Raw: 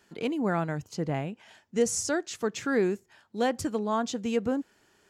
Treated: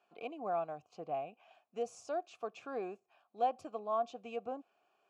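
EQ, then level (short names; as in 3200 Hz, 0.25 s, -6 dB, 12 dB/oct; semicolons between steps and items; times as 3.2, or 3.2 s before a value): dynamic EQ 1700 Hz, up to -4 dB, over -43 dBFS, Q 1; vowel filter a; +3.0 dB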